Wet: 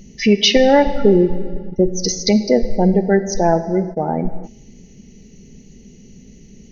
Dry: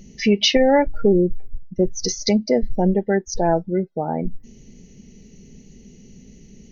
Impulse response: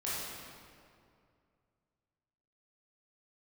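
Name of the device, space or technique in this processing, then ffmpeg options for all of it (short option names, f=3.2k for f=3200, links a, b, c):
keyed gated reverb: -filter_complex "[0:a]asplit=3[a][b][c];[1:a]atrim=start_sample=2205[d];[b][d]afir=irnorm=-1:irlink=0[e];[c]apad=whole_len=296197[f];[e][f]sidechaingate=range=-24dB:threshold=-33dB:ratio=16:detection=peak,volume=-14.5dB[g];[a][g]amix=inputs=2:normalize=0,volume=2.5dB"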